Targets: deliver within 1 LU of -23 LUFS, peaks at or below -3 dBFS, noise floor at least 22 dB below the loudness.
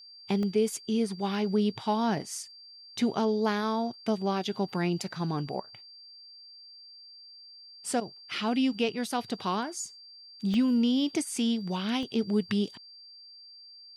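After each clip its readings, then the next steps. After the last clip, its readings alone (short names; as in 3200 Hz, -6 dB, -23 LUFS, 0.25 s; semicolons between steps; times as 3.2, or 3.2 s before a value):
dropouts 3; longest dropout 1.5 ms; steady tone 4700 Hz; tone level -48 dBFS; loudness -29.5 LUFS; peak -15.5 dBFS; loudness target -23.0 LUFS
-> interpolate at 0.43/10.54/12.03, 1.5 ms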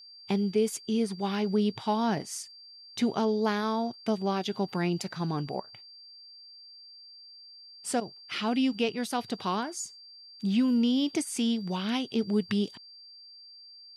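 dropouts 0; steady tone 4700 Hz; tone level -48 dBFS
-> notch 4700 Hz, Q 30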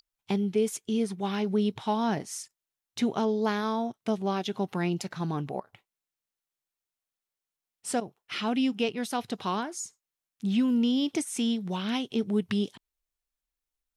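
steady tone none; loudness -29.5 LUFS; peak -15.5 dBFS; loudness target -23.0 LUFS
-> gain +6.5 dB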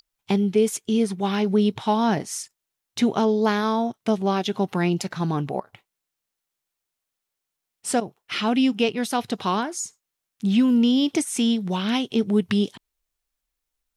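loudness -23.0 LUFS; peak -9.0 dBFS; noise floor -84 dBFS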